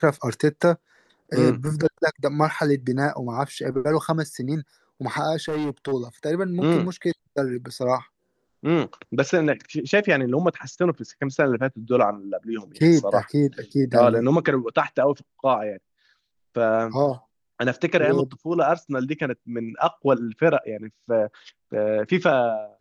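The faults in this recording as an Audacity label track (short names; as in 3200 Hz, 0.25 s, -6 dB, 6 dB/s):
5.480000	5.930000	clipped -23 dBFS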